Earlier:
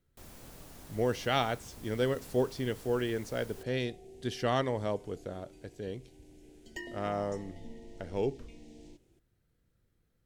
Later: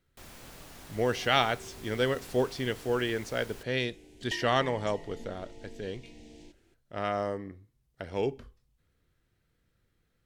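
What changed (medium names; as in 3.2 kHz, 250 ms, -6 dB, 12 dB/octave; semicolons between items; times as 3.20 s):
second sound: entry -2.45 s; master: add peaking EQ 2.3 kHz +7 dB 3 oct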